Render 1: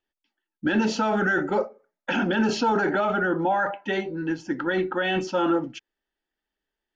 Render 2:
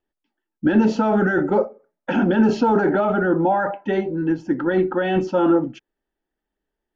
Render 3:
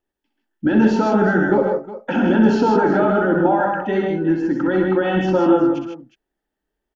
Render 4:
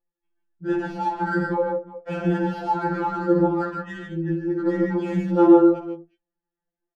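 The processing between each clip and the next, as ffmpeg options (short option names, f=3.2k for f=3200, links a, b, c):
-af "tiltshelf=f=1.4k:g=7.5"
-af "aecho=1:1:63|112|133|154|362:0.447|0.224|0.447|0.531|0.188"
-filter_complex "[0:a]flanger=delay=7.2:depth=3.8:regen=-44:speed=0.69:shape=triangular,acrossover=split=200|1100[a][b][c];[c]adynamicsmooth=sensitivity=5:basefreq=2.1k[d];[a][b][d]amix=inputs=3:normalize=0,afftfilt=real='re*2.83*eq(mod(b,8),0)':imag='im*2.83*eq(mod(b,8),0)':win_size=2048:overlap=0.75"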